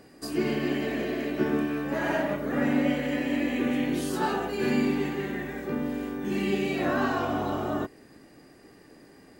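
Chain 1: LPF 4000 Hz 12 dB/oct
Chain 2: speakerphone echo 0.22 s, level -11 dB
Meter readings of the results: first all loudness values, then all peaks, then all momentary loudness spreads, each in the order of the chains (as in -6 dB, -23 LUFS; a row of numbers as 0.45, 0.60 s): -28.5, -28.0 LUFS; -14.0, -13.5 dBFS; 6, 6 LU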